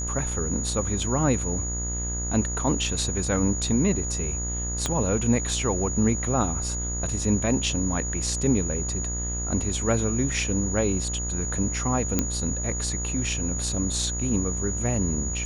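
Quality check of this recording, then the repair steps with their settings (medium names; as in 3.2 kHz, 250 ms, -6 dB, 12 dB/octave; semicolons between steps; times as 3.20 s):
buzz 60 Hz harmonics 35 -31 dBFS
whine 6.8 kHz -30 dBFS
4.86 s: pop -10 dBFS
12.19 s: pop -7 dBFS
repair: de-click; de-hum 60 Hz, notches 35; band-stop 6.8 kHz, Q 30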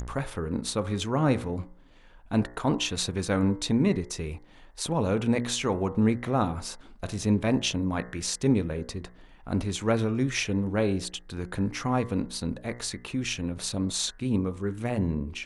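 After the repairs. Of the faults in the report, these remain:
4.86 s: pop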